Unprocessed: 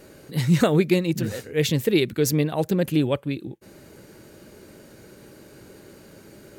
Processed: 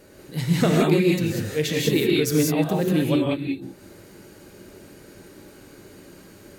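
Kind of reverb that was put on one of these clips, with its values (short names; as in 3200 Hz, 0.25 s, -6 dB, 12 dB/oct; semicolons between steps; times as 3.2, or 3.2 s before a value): non-linear reverb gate 0.22 s rising, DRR -3 dB; gain -3 dB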